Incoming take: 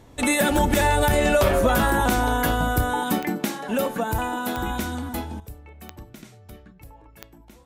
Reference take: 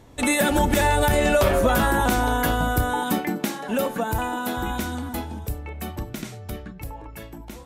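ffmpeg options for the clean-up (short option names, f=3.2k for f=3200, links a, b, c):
-af "adeclick=t=4,asetnsamples=n=441:p=0,asendcmd='5.4 volume volume 10.5dB',volume=0dB"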